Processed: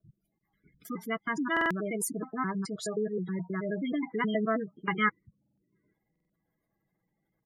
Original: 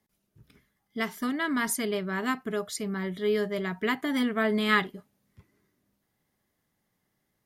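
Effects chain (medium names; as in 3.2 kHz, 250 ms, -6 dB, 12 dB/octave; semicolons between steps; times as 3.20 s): slices played last to first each 106 ms, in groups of 4; spectral gate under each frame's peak -15 dB strong; band-stop 1.8 kHz, Q 9.4; comb 6.1 ms, depth 43%; buffer glitch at 1.52/5.39/6.11 s, samples 2048, times 3; trim -1.5 dB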